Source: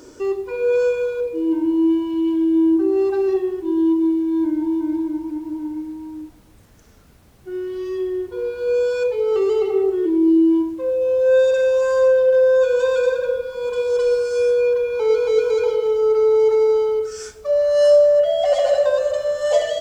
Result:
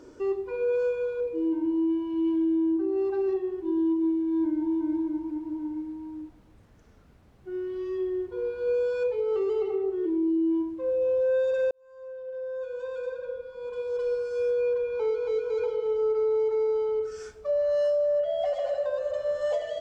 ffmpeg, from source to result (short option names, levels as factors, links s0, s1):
-filter_complex "[0:a]asplit=2[s0][s1];[s0]atrim=end=11.71,asetpts=PTS-STARTPTS,afade=t=out:st=11.706:d=0.004:c=hsin[s2];[s1]atrim=start=11.71,asetpts=PTS-STARTPTS,afade=t=in:d=3.97[s3];[s2][s3]concat=n=2:v=0:a=1,lowpass=f=2100:p=1,alimiter=limit=0.178:level=0:latency=1:release=433,volume=0.531"